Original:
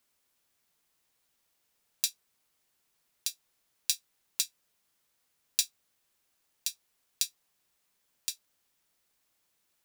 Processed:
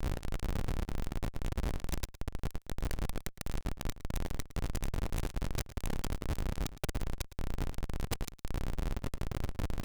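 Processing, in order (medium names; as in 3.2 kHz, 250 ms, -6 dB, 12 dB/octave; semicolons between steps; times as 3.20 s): spectral levelling over time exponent 0.4; 2.06–4.45 s: peaking EQ 2.4 kHz -11 dB 2.2 oct; inverted gate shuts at -19 dBFS, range -42 dB; waveshaping leveller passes 3; level held to a coarse grid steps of 22 dB; resonant low shelf 290 Hz -10 dB, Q 1.5; de-hum 142.9 Hz, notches 12; ever faster or slower copies 320 ms, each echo +4 st, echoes 2; sine folder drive 12 dB, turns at -19 dBFS; elliptic band-stop 200–1500 Hz, stop band 80 dB; Schmitt trigger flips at -34.5 dBFS; echo from a far wall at 19 m, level -15 dB; trim +15.5 dB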